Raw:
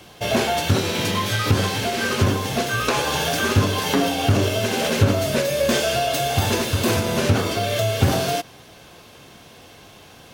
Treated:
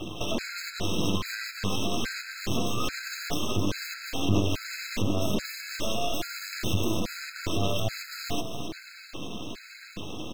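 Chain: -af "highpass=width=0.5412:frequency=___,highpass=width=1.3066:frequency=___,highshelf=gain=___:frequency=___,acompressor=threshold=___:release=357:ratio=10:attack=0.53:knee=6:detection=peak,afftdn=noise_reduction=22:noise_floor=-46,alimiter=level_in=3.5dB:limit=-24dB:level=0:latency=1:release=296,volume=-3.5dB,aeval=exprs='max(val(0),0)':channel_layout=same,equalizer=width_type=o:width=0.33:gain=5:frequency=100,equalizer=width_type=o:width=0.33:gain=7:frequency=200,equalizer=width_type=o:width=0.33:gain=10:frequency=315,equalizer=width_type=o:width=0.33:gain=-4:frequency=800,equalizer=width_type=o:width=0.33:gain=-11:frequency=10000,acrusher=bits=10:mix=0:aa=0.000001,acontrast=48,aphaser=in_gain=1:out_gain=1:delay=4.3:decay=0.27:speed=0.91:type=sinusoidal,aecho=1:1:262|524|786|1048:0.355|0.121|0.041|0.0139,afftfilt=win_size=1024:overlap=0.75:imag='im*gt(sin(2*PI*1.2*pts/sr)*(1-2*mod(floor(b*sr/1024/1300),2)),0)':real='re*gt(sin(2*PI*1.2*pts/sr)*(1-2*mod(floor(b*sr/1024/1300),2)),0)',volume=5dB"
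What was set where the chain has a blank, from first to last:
42, 42, 5.5, 2300, -24dB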